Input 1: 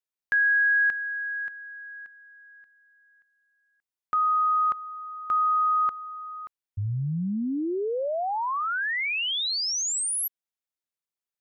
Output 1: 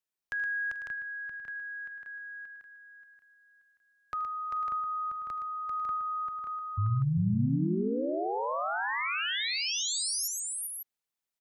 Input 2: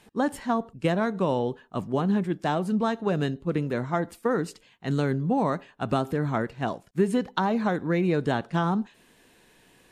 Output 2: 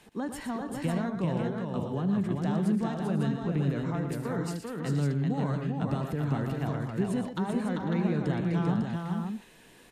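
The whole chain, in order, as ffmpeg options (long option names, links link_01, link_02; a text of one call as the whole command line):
ffmpeg -i in.wav -filter_complex "[0:a]acrossover=split=190[link_01][link_02];[link_02]acompressor=threshold=-35dB:ratio=3:attack=0.82:release=114:knee=2.83:detection=peak[link_03];[link_01][link_03]amix=inputs=2:normalize=0,asplit=2[link_04][link_05];[link_05]aecho=0:1:77|118|393|437|498|550:0.141|0.355|0.631|0.1|0.211|0.531[link_06];[link_04][link_06]amix=inputs=2:normalize=0" out.wav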